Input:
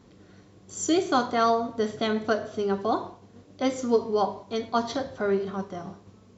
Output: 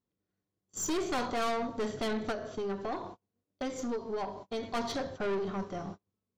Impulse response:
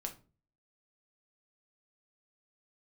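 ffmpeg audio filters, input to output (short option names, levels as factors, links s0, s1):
-filter_complex "[0:a]agate=range=0.0224:threshold=0.01:ratio=16:detection=peak,asettb=1/sr,asplit=3[s0][s1][s2];[s0]atrim=end=2.314[s3];[s1]atrim=start=2.31:end=4.63,asetpts=PTS-STARTPTS,afade=t=in:d=0.004:c=qsin,afade=t=out:st=2.316:d=0.004:c=qsin,acompressor=threshold=0.0355:ratio=4[s4];[s2]atrim=start=4.626[s5];[s3][s4]acrossfade=d=0.004:c1=hsin:c2=qsin[s6];[s6][s5]acrossfade=d=0.004:c1=qsin:c2=hsin,aeval=exprs='(tanh(28.2*val(0)+0.3)-tanh(0.3))/28.2':c=same"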